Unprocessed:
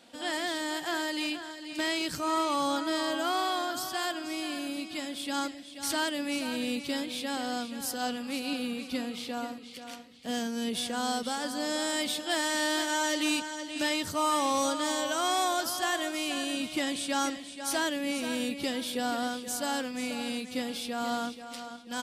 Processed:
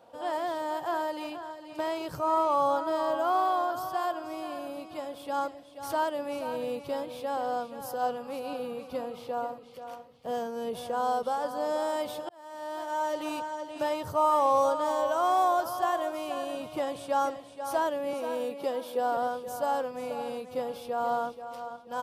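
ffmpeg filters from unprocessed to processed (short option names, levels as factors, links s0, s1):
-filter_complex "[0:a]asettb=1/sr,asplit=3[s0][s1][s2];[s0]atrim=end=18.134[s3];[s1]atrim=start=18.13:end=19.17,asetpts=PTS-STARTPTS,afade=t=in:d=0.004:c=qsin,afade=t=out:st=1.036:d=0.004:c=qsin,highpass=f=200:w=0.5412,highpass=f=200:w=1.3066[s4];[s2]atrim=start=19.166[s5];[s3][s4]acrossfade=d=0.004:c1=hsin:c2=qsin[s6];[s6][s5]acrossfade=d=0.004:c1=qsin:c2=hsin,asplit=2[s7][s8];[s7]atrim=end=12.29,asetpts=PTS-STARTPTS,afade=t=out:st=12.286:d=0.004:c=hsin[s9];[s8]atrim=start=12.29,asetpts=PTS-STARTPTS,afade=t=in:d=1.12[s10];[s9][s10]concat=n=2:v=0:a=1,equalizer=f=125:t=o:w=1:g=10,equalizer=f=250:t=o:w=1:g=-11,equalizer=f=500:t=o:w=1:g=9,equalizer=f=1000:t=o:w=1:g=9,equalizer=f=2000:t=o:w=1:g=-9,equalizer=f=4000:t=o:w=1:g=-8,equalizer=f=8000:t=o:w=1:g=-11,volume=0.794"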